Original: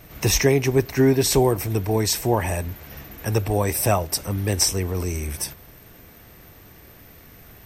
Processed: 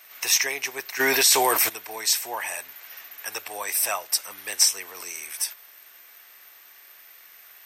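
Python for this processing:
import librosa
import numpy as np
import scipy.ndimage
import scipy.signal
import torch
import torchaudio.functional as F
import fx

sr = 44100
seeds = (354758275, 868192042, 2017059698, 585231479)

y = scipy.signal.sosfilt(scipy.signal.butter(2, 1300.0, 'highpass', fs=sr, output='sos'), x)
y = fx.env_flatten(y, sr, amount_pct=70, at=(0.99, 1.68), fade=0.02)
y = y * 10.0 ** (1.5 / 20.0)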